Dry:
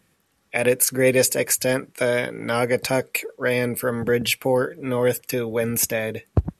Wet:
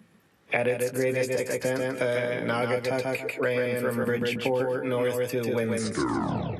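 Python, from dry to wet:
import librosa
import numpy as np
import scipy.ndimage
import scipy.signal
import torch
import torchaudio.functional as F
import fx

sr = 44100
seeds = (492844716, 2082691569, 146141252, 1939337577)

y = fx.tape_stop_end(x, sr, length_s=0.96)
y = fx.lowpass(y, sr, hz=2300.0, slope=6)
y = fx.noise_reduce_blind(y, sr, reduce_db=19)
y = scipy.signal.sosfilt(scipy.signal.butter(2, 89.0, 'highpass', fs=sr, output='sos'), y)
y = fx.doubler(y, sr, ms=18.0, db=-10)
y = fx.echo_feedback(y, sr, ms=141, feedback_pct=22, wet_db=-3)
y = fx.band_squash(y, sr, depth_pct=100)
y = F.gain(torch.from_numpy(y), -7.0).numpy()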